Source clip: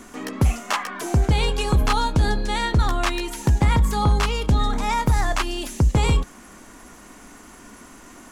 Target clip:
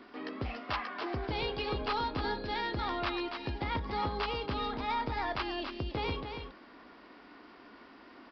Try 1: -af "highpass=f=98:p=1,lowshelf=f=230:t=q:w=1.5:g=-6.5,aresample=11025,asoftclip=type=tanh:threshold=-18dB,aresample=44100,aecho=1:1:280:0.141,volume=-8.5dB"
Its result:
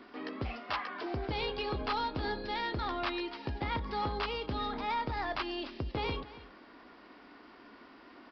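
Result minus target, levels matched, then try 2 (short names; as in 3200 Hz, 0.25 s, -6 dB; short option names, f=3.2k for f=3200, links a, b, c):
echo-to-direct -10 dB
-af "highpass=f=98:p=1,lowshelf=f=230:t=q:w=1.5:g=-6.5,aresample=11025,asoftclip=type=tanh:threshold=-18dB,aresample=44100,aecho=1:1:280:0.447,volume=-8.5dB"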